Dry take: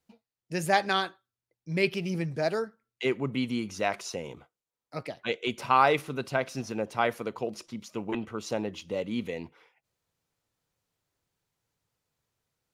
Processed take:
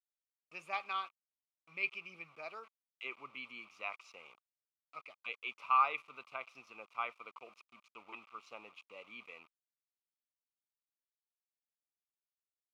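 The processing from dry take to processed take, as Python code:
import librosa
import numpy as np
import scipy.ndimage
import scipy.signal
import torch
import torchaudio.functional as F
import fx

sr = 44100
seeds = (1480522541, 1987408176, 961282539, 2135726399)

y = np.where(np.abs(x) >= 10.0 ** (-41.5 / 20.0), x, 0.0)
y = fx.double_bandpass(y, sr, hz=1700.0, octaves=1.0)
y = y * 10.0 ** (-2.5 / 20.0)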